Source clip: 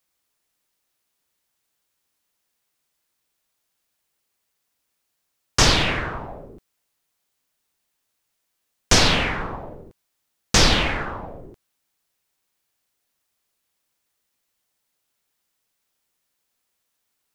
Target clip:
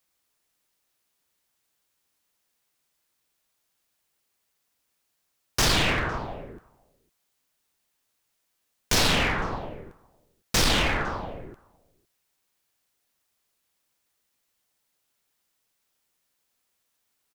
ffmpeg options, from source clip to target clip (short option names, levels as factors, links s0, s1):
-filter_complex "[0:a]asplit=2[s0][s1];[s1]adelay=507.3,volume=0.0398,highshelf=f=4000:g=-11.4[s2];[s0][s2]amix=inputs=2:normalize=0,volume=8.91,asoftclip=hard,volume=0.112"